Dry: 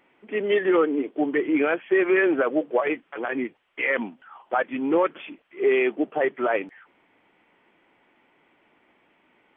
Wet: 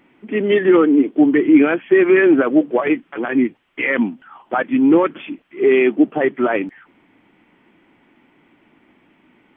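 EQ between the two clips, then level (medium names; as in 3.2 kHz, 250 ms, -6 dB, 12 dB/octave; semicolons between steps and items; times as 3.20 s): resonant low shelf 370 Hz +7 dB, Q 1.5; +5.0 dB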